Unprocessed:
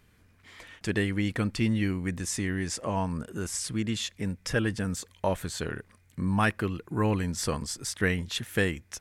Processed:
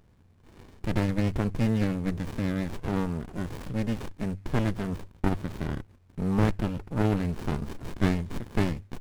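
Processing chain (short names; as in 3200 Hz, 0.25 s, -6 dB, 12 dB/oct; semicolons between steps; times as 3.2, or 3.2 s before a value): CVSD 64 kbps; de-hum 49.25 Hz, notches 2; running maximum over 65 samples; gain +3 dB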